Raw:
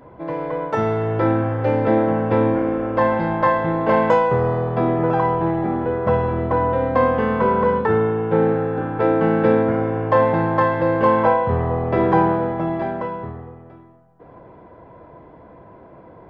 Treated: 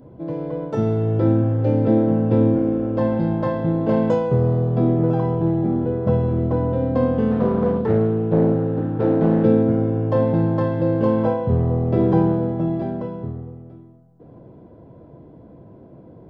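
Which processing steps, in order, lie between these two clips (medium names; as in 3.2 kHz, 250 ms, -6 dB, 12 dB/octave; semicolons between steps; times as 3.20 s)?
graphic EQ 125/250/1000/2000 Hz +6/+5/-9/-12 dB; 7.31–9.44 s: loudspeaker Doppler distortion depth 0.37 ms; trim -1.5 dB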